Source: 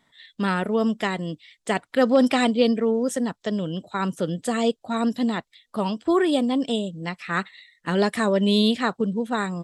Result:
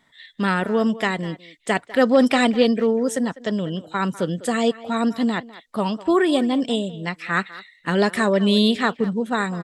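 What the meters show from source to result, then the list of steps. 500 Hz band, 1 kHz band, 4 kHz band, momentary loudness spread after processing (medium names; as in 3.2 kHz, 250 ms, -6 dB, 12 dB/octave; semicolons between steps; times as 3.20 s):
+2.0 dB, +2.5 dB, +2.5 dB, 10 LU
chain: peaking EQ 1.8 kHz +3 dB 0.73 oct; speakerphone echo 200 ms, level -16 dB; trim +2 dB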